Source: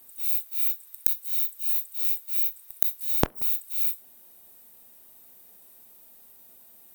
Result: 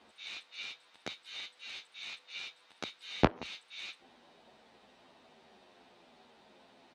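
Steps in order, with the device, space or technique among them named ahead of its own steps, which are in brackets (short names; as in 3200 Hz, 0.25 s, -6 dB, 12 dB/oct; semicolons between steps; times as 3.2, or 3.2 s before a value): barber-pole flanger into a guitar amplifier (endless flanger 10.5 ms -1.1 Hz; soft clip -20 dBFS, distortion -13 dB; speaker cabinet 81–4200 Hz, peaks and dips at 97 Hz -7 dB, 150 Hz -4 dB, 830 Hz +3 dB); gain +9 dB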